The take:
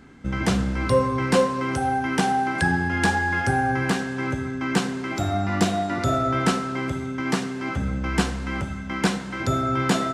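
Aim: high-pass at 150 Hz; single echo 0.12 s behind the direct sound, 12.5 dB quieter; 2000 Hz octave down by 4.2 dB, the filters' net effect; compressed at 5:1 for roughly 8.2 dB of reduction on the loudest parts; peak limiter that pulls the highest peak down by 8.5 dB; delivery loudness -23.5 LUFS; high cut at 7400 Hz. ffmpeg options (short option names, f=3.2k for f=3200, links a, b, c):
-af "highpass=150,lowpass=7.4k,equalizer=f=2k:t=o:g=-5.5,acompressor=threshold=-25dB:ratio=5,alimiter=limit=-22.5dB:level=0:latency=1,aecho=1:1:120:0.237,volume=8dB"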